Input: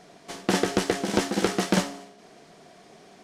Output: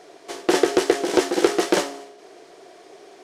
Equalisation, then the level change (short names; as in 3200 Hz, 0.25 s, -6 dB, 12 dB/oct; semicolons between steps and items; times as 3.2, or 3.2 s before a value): resonant low shelf 270 Hz -9 dB, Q 3; +3.0 dB